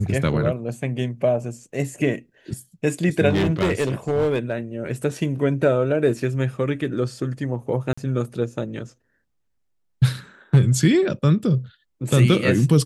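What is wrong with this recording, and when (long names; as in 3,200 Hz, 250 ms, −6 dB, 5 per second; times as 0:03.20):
0:03.29–0:04.53: clipping −16 dBFS
0:07.93–0:07.97: drop-out 45 ms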